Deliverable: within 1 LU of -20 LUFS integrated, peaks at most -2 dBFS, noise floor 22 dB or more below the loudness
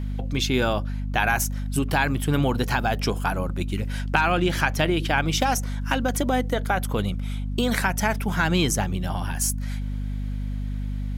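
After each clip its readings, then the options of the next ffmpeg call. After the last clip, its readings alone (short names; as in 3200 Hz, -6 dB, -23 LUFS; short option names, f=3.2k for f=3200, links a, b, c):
hum 50 Hz; harmonics up to 250 Hz; hum level -25 dBFS; loudness -24.5 LUFS; peak -2.5 dBFS; loudness target -20.0 LUFS
-> -af "bandreject=f=50:t=h:w=6,bandreject=f=100:t=h:w=6,bandreject=f=150:t=h:w=6,bandreject=f=200:t=h:w=6,bandreject=f=250:t=h:w=6"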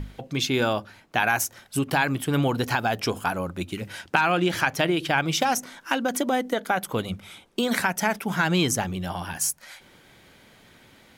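hum none; loudness -25.0 LUFS; peak -2.0 dBFS; loudness target -20.0 LUFS
-> -af "volume=5dB,alimiter=limit=-2dB:level=0:latency=1"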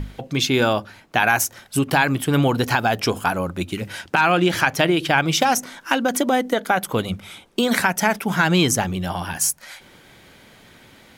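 loudness -20.5 LUFS; peak -2.0 dBFS; noise floor -50 dBFS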